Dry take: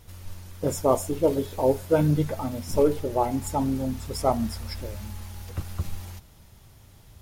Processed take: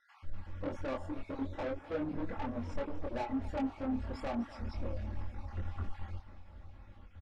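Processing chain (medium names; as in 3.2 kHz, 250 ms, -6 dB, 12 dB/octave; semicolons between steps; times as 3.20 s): random holes in the spectrogram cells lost 36%; Chebyshev low-pass 1.8 kHz, order 2; comb 3.6 ms, depth 73%; compression 16:1, threshold -24 dBFS, peak gain reduction 11 dB; saturation -32 dBFS, distortion -7 dB; chorus voices 6, 1.1 Hz, delay 24 ms, depth 3 ms; modulated delay 248 ms, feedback 70%, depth 160 cents, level -17 dB; trim +1 dB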